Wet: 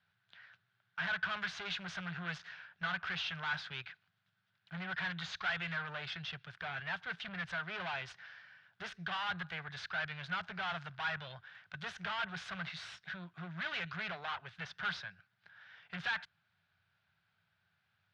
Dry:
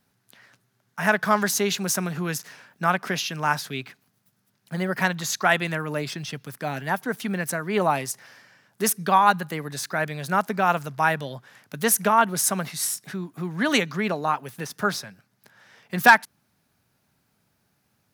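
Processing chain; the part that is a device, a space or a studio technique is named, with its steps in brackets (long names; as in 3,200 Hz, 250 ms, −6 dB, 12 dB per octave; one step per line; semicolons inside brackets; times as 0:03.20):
scooped metal amplifier (tube saturation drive 31 dB, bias 0.6; loudspeaker in its box 81–3,600 Hz, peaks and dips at 94 Hz +10 dB, 170 Hz +9 dB, 350 Hz +8 dB, 700 Hz +4 dB, 1,500 Hz +9 dB, 3,400 Hz +3 dB; guitar amp tone stack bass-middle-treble 10-0-10)
level +1 dB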